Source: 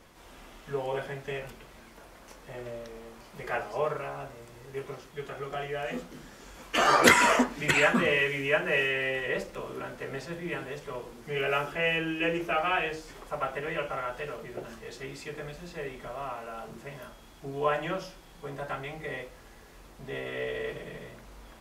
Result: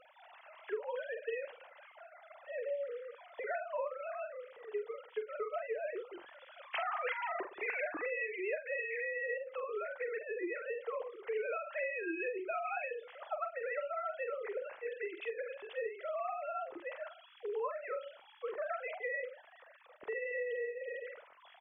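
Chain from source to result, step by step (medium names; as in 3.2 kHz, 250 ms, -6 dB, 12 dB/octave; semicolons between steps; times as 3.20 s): formants replaced by sine waves; compression 12:1, threshold -37 dBFS, peak gain reduction 22 dB; doubling 46 ms -10 dB; trim +2 dB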